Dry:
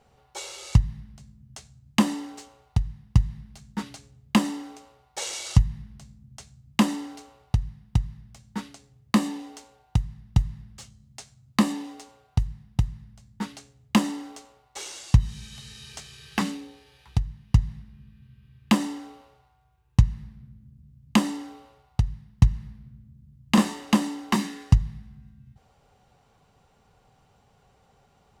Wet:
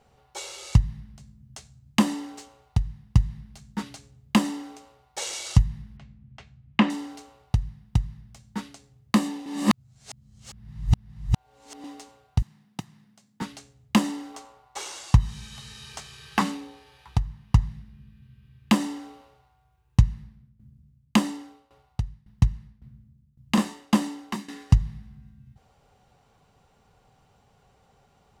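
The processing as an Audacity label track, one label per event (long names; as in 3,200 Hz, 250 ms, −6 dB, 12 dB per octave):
5.970000	6.900000	low-pass with resonance 2,500 Hz, resonance Q 1.6
9.460000	11.840000	reverse
12.420000	13.420000	high-pass filter 200 Hz 24 dB per octave
14.340000	17.680000	parametric band 1,000 Hz +7.5 dB 1.2 octaves
20.040000	24.700000	shaped tremolo saw down 1.8 Hz, depth 85%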